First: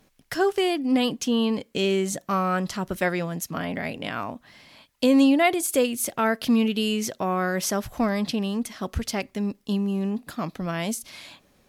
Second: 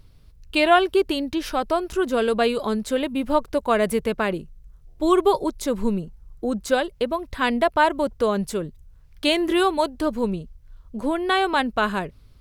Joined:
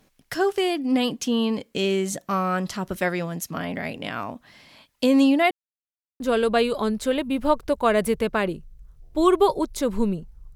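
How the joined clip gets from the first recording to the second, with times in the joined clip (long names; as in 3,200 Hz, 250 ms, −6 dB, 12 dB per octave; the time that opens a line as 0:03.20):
first
0:05.51–0:06.20: silence
0:06.20: continue with second from 0:02.05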